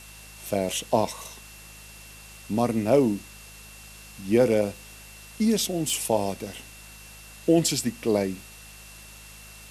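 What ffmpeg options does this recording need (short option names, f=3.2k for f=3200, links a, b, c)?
-af "adeclick=t=4,bandreject=f=52.6:t=h:w=4,bandreject=f=105.2:t=h:w=4,bandreject=f=157.8:t=h:w=4,bandreject=f=210.4:t=h:w=4,bandreject=f=2.7k:w=30,afwtdn=0.005"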